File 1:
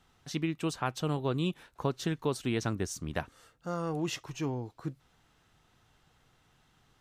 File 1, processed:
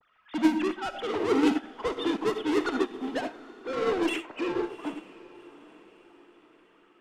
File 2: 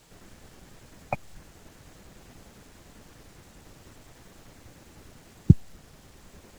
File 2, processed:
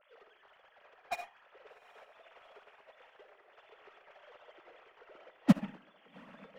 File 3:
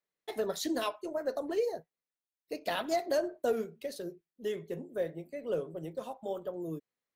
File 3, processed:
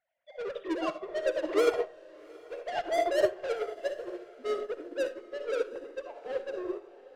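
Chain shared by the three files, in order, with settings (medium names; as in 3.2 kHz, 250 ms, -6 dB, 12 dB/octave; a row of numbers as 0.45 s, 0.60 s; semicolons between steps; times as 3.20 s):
formants replaced by sine waves; power-law waveshaper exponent 0.5; in parallel at -11 dB: fuzz box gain 31 dB, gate -39 dBFS; on the sum: level-controlled noise filter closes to 2.8 kHz, open at -15.5 dBFS; on a send: echo that smears into a reverb 758 ms, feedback 46%, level -9 dB; on the sum: algorithmic reverb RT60 0.67 s, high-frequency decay 0.35×, pre-delay 20 ms, DRR 3 dB; upward expansion 2.5:1, over -25 dBFS; peak normalisation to -12 dBFS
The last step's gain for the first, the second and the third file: -3.0 dB, -10.5 dB, -6.0 dB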